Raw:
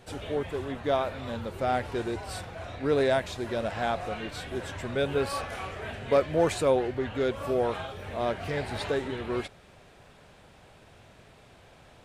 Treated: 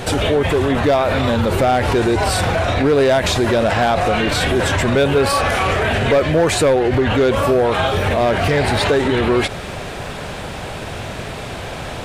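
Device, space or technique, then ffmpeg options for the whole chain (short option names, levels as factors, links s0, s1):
loud club master: -af "acompressor=threshold=0.0355:ratio=2.5,asoftclip=type=hard:threshold=0.0531,alimiter=level_in=53.1:limit=0.891:release=50:level=0:latency=1,volume=0.398"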